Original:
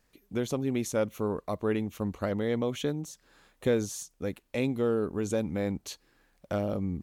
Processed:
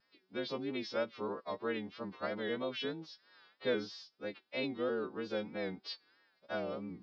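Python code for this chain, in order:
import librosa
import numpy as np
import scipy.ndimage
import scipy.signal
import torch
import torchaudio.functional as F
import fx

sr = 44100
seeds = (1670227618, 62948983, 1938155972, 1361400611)

y = fx.freq_snap(x, sr, grid_st=2)
y = scipy.signal.sosfilt(scipy.signal.butter(2, 220.0, 'highpass', fs=sr, output='sos'), y)
y = fx.vibrato(y, sr, rate_hz=3.1, depth_cents=90.0)
y = scipy.signal.sosfilt(scipy.signal.cheby1(6, 3, 5200.0, 'lowpass', fs=sr, output='sos'), y)
y = fx.comb_fb(y, sr, f0_hz=380.0, decay_s=0.29, harmonics='all', damping=0.0, mix_pct=40)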